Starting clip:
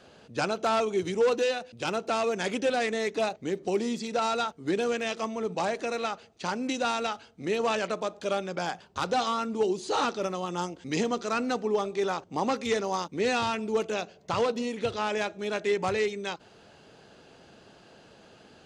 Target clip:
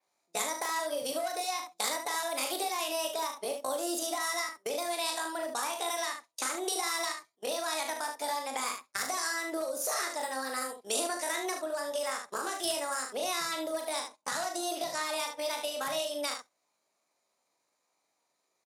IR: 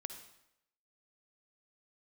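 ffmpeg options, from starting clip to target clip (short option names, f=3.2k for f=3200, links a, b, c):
-filter_complex "[0:a]acompressor=threshold=-27dB:ratio=12,bass=f=250:g=-9,treble=f=4k:g=10,acrossover=split=140|3000[a][b][c];[b]acompressor=threshold=-34dB:ratio=6[d];[a][d][c]amix=inputs=3:normalize=0,agate=range=-28dB:threshold=-41dB:ratio=16:detection=peak,highpass=f=99:p=1,asetrate=64194,aresample=44100,atempo=0.686977,adynamicequalizer=threshold=0.00251:dfrequency=7500:dqfactor=1.3:tfrequency=7500:tqfactor=1.3:attack=5:release=100:ratio=0.375:range=2.5:mode=cutabove:tftype=bell,aecho=1:1:38|75:0.501|0.422,asplit=2[e][f];[1:a]atrim=start_sample=2205,atrim=end_sample=3528,asetrate=48510,aresample=44100[g];[f][g]afir=irnorm=-1:irlink=0,volume=-8.5dB[h];[e][h]amix=inputs=2:normalize=0"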